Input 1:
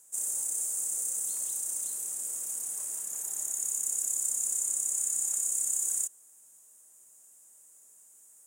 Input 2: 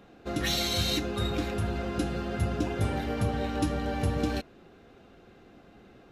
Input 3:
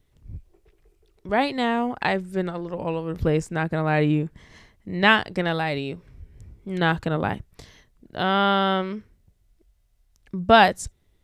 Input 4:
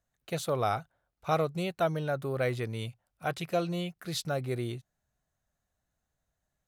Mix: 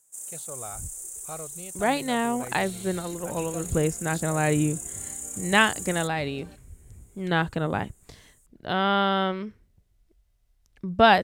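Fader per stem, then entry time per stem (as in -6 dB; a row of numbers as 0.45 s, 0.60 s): -6.0 dB, -18.5 dB, -2.5 dB, -11.5 dB; 0.00 s, 2.15 s, 0.50 s, 0.00 s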